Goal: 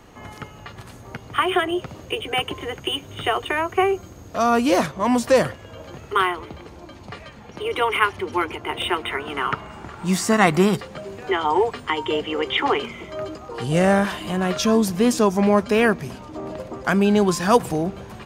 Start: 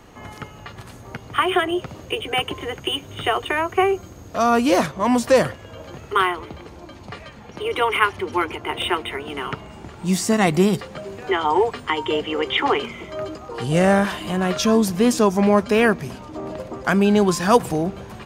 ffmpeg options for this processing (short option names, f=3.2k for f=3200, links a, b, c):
-filter_complex "[0:a]asettb=1/sr,asplit=3[a][b][c];[a]atrim=end=9.034[d];[b]atrim=start=9.03:end=10.77,asetpts=PTS-STARTPTS,afade=t=in:d=0.004:c=qsin,afade=t=out:st=1.736:d=0.004:c=qsin,equalizer=f=1.3k:t=o:w=1.3:g=8.5[e];[c]atrim=start=10.766[f];[d][e]acrossfade=d=0.004:c1=hsin:c2=qsin[g];[g][f]acrossfade=d=0.004:c1=qsin:c2=hsin,volume=-1dB"